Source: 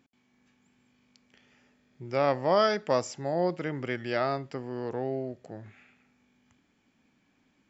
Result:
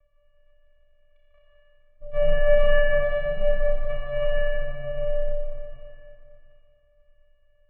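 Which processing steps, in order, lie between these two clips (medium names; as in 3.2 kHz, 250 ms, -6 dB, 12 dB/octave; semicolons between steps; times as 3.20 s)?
vocoder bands 4, square 286 Hz; Schroeder reverb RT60 2.8 s, combs from 27 ms, DRR -4 dB; mistuned SSB -270 Hz 220–3000 Hz; trim +7 dB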